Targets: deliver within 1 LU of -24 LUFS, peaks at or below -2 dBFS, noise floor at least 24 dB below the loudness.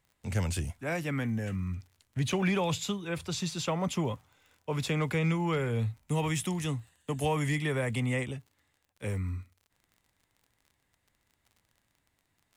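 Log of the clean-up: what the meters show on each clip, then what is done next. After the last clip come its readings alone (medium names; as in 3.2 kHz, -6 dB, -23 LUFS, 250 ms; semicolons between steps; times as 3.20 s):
tick rate 34 per s; loudness -32.0 LUFS; peak level -19.5 dBFS; loudness target -24.0 LUFS
-> de-click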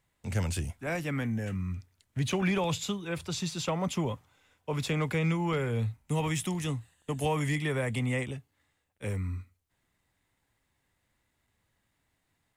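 tick rate 0 per s; loudness -32.0 LUFS; peak level -19.0 dBFS; loudness target -24.0 LUFS
-> trim +8 dB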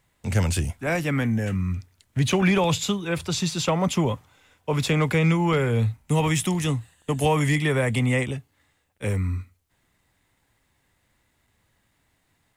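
loudness -24.0 LUFS; peak level -11.0 dBFS; noise floor -70 dBFS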